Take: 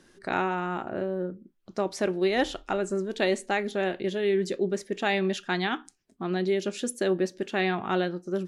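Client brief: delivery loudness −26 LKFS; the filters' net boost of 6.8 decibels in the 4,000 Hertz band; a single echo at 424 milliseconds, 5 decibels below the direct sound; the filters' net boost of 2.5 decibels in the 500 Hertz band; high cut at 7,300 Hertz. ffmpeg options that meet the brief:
ffmpeg -i in.wav -af "lowpass=7300,equalizer=frequency=500:width_type=o:gain=3.5,equalizer=frequency=4000:width_type=o:gain=8.5,aecho=1:1:424:0.562,volume=-1dB" out.wav

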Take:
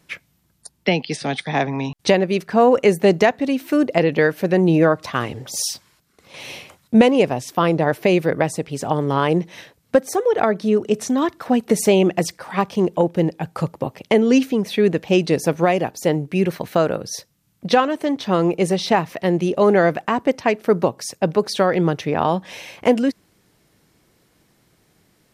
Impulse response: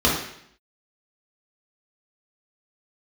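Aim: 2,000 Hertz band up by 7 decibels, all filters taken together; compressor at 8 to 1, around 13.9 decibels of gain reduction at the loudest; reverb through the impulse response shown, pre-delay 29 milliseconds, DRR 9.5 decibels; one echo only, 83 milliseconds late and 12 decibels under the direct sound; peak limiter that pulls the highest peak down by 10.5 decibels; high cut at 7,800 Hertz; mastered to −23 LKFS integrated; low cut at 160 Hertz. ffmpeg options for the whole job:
-filter_complex "[0:a]highpass=160,lowpass=7800,equalizer=frequency=2000:width_type=o:gain=8.5,acompressor=threshold=-23dB:ratio=8,alimiter=limit=-18dB:level=0:latency=1,aecho=1:1:83:0.251,asplit=2[link_01][link_02];[1:a]atrim=start_sample=2205,adelay=29[link_03];[link_02][link_03]afir=irnorm=-1:irlink=0,volume=-28dB[link_04];[link_01][link_04]amix=inputs=2:normalize=0,volume=6.5dB"

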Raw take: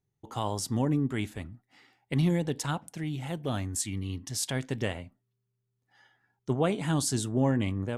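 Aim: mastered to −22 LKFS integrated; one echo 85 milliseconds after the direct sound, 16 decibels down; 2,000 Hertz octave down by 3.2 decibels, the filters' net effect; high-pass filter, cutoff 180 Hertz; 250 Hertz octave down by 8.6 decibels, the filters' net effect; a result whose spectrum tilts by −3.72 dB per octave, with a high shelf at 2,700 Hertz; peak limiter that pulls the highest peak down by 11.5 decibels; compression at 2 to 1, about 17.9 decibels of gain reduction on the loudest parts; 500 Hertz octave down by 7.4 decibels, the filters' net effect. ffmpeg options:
ffmpeg -i in.wav -af "highpass=180,equalizer=frequency=250:width_type=o:gain=-7.5,equalizer=frequency=500:width_type=o:gain=-7,equalizer=frequency=2000:width_type=o:gain=-7.5,highshelf=frequency=2700:gain=9,acompressor=threshold=-54dB:ratio=2,alimiter=level_in=15dB:limit=-24dB:level=0:latency=1,volume=-15dB,aecho=1:1:85:0.158,volume=29dB" out.wav

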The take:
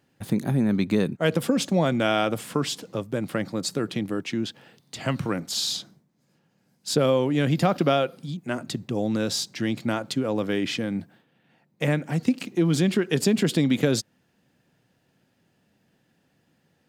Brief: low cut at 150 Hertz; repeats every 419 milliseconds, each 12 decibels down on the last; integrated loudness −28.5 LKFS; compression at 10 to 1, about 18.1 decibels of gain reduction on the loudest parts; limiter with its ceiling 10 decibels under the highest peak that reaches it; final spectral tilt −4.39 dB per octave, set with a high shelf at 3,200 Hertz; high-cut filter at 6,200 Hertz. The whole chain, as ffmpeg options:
ffmpeg -i in.wav -af "highpass=150,lowpass=6200,highshelf=frequency=3200:gain=4.5,acompressor=threshold=-36dB:ratio=10,alimiter=level_in=6.5dB:limit=-24dB:level=0:latency=1,volume=-6.5dB,aecho=1:1:419|838|1257:0.251|0.0628|0.0157,volume=13dB" out.wav

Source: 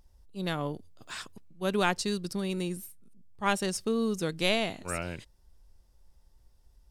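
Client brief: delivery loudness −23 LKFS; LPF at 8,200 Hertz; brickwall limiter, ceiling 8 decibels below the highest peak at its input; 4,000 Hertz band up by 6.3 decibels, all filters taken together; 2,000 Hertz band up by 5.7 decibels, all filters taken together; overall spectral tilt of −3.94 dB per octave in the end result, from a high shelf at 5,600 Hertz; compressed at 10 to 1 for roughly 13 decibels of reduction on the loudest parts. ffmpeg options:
ffmpeg -i in.wav -af "lowpass=8200,equalizer=frequency=2000:width_type=o:gain=5.5,equalizer=frequency=4000:width_type=o:gain=4,highshelf=frequency=5600:gain=6,acompressor=threshold=-30dB:ratio=10,volume=15dB,alimiter=limit=-11dB:level=0:latency=1" out.wav

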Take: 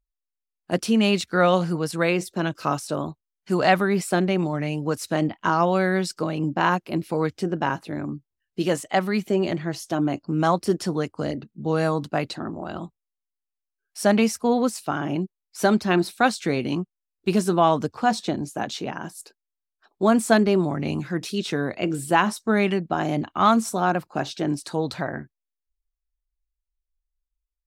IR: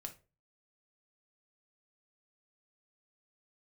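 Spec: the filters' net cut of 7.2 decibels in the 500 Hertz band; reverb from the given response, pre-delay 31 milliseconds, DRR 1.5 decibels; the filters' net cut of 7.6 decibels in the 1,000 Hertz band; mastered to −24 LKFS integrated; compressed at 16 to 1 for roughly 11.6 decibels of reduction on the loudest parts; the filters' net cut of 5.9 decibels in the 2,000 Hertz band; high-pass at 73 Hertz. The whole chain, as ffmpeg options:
-filter_complex "[0:a]highpass=73,equalizer=frequency=500:width_type=o:gain=-8,equalizer=frequency=1000:width_type=o:gain=-6,equalizer=frequency=2000:width_type=o:gain=-5,acompressor=threshold=-29dB:ratio=16,asplit=2[link_01][link_02];[1:a]atrim=start_sample=2205,adelay=31[link_03];[link_02][link_03]afir=irnorm=-1:irlink=0,volume=2.5dB[link_04];[link_01][link_04]amix=inputs=2:normalize=0,volume=8.5dB"

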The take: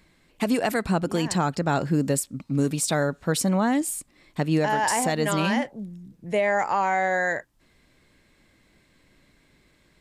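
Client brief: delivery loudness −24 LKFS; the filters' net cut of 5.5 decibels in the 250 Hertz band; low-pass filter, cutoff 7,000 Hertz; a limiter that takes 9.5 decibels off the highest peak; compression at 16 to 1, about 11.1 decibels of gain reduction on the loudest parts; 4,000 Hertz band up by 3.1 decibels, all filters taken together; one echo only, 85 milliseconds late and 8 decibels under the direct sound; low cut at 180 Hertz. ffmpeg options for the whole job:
ffmpeg -i in.wav -af "highpass=180,lowpass=7000,equalizer=frequency=250:width_type=o:gain=-5.5,equalizer=frequency=4000:width_type=o:gain=4.5,acompressor=threshold=-30dB:ratio=16,alimiter=level_in=2dB:limit=-24dB:level=0:latency=1,volume=-2dB,aecho=1:1:85:0.398,volume=12.5dB" out.wav

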